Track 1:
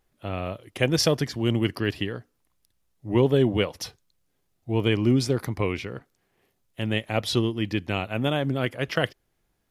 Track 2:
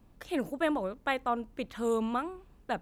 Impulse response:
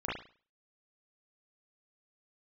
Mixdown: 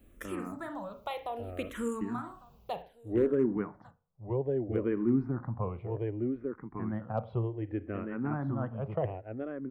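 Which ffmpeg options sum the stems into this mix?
-filter_complex "[0:a]lowpass=f=1.4k:w=0.5412,lowpass=f=1.4k:w=1.3066,volume=-5.5dB,asplit=3[a][b][c];[a]atrim=end=0.69,asetpts=PTS-STARTPTS,afade=t=out:st=0.686:d=0.004:c=hsin[d];[b]atrim=start=0.69:end=2.01,asetpts=PTS-STARTPTS,volume=0[e];[c]atrim=start=2.01,asetpts=PTS-STARTPTS,afade=t=in:d=0.004:c=hsin[f];[d][e][f]concat=n=3:v=0:a=1,asplit=4[g][h][i][j];[h]volume=-19dB[k];[i]volume=-3.5dB[l];[1:a]highshelf=f=11k:g=10.5,acompressor=threshold=-35dB:ratio=3,volume=2.5dB,asplit=3[m][n][o];[n]volume=-13.5dB[p];[o]volume=-23.5dB[q];[j]apad=whole_len=124332[r];[m][r]sidechaincompress=threshold=-35dB:ratio=8:attack=23:release=1380[s];[2:a]atrim=start_sample=2205[t];[k][p]amix=inputs=2:normalize=0[u];[u][t]afir=irnorm=-1:irlink=0[v];[l][q]amix=inputs=2:normalize=0,aecho=0:1:1151:1[w];[g][s][v][w]amix=inputs=4:normalize=0,asoftclip=type=hard:threshold=-16dB,asplit=2[x][y];[y]afreqshift=-0.64[z];[x][z]amix=inputs=2:normalize=1"

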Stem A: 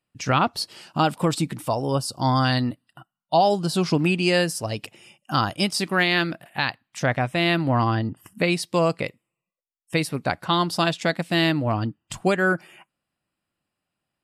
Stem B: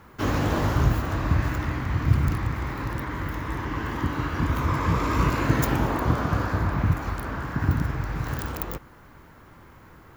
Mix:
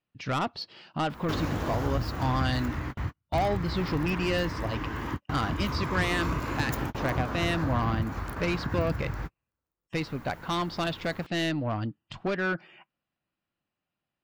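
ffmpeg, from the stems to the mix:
-filter_complex "[0:a]lowpass=f=4.3k:w=0.5412,lowpass=f=4.3k:w=1.3066,asoftclip=type=tanh:threshold=-18dB,volume=-4.5dB,asplit=2[a][b];[1:a]acompressor=threshold=-39dB:ratio=2,adelay=1100,volume=3dB[c];[b]apad=whole_len=496699[d];[c][d]sidechaingate=range=-54dB:threshold=-57dB:ratio=16:detection=peak[e];[a][e]amix=inputs=2:normalize=0"

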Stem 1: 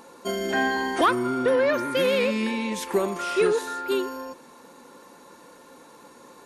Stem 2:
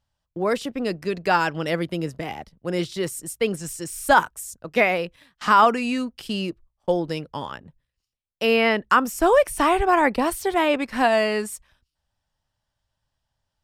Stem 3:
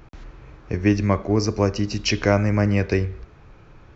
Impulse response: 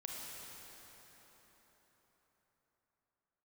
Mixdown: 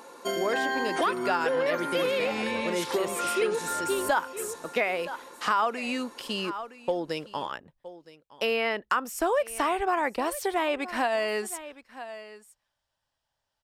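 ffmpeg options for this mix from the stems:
-filter_complex "[0:a]volume=1.5dB,asplit=2[a][b];[b]volume=-15.5dB[c];[1:a]volume=0dB,asplit=3[d][e][f];[e]volume=-20.5dB[g];[2:a]adelay=1450,volume=-15.5dB[h];[f]apad=whole_len=238293[i];[h][i]sidechaincompress=threshold=-29dB:ratio=8:attack=16:release=887[j];[c][g]amix=inputs=2:normalize=0,aecho=0:1:965:1[k];[a][d][j][k]amix=inputs=4:normalize=0,bass=f=250:g=-12,treble=f=4k:g=-1,acompressor=threshold=-26dB:ratio=2.5"

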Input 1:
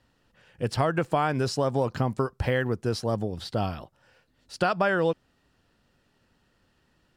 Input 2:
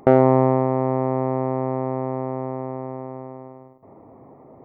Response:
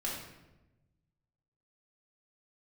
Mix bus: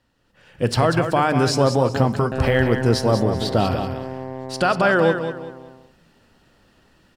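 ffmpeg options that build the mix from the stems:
-filter_complex "[0:a]alimiter=limit=-17.5dB:level=0:latency=1:release=102,volume=-1.5dB,asplit=3[a][b][c];[b]volume=-16dB[d];[c]volume=-7dB[e];[1:a]agate=range=-33dB:threshold=-35dB:ratio=3:detection=peak,asoftclip=type=tanh:threshold=-14.5dB,adelay=2250,volume=-14dB[f];[2:a]atrim=start_sample=2205[g];[d][g]afir=irnorm=-1:irlink=0[h];[e]aecho=0:1:191|382|573|764:1|0.29|0.0841|0.0244[i];[a][f][h][i]amix=inputs=4:normalize=0,bandreject=f=50:t=h:w=6,bandreject=f=100:t=h:w=6,bandreject=f=150:t=h:w=6,dynaudnorm=f=120:g=7:m=10dB"

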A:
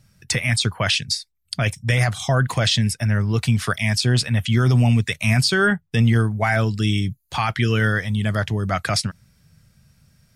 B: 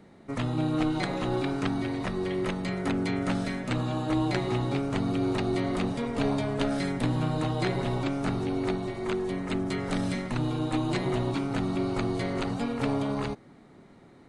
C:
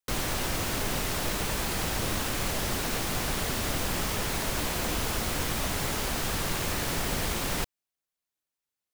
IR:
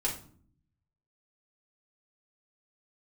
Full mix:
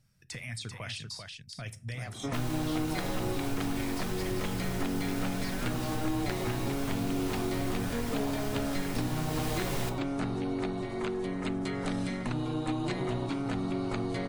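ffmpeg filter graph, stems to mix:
-filter_complex "[0:a]alimiter=limit=-16.5dB:level=0:latency=1:release=70,volume=-14dB,asplit=4[a][b][c][d];[b]volume=-16dB[e];[c]volume=-5dB[f];[1:a]adelay=1950,volume=1.5dB,asplit=2[g][h];[h]volume=-18.5dB[i];[2:a]adelay=2250,volume=-3dB,asplit=2[j][k];[k]volume=-7dB[l];[d]apad=whole_len=493206[m];[j][m]sidechaincompress=threshold=-53dB:ratio=8:attack=16:release=319[n];[3:a]atrim=start_sample=2205[o];[e][i][l]amix=inputs=3:normalize=0[p];[p][o]afir=irnorm=-1:irlink=0[q];[f]aecho=0:1:390:1[r];[a][g][n][q][r]amix=inputs=5:normalize=0,acompressor=threshold=-34dB:ratio=2"

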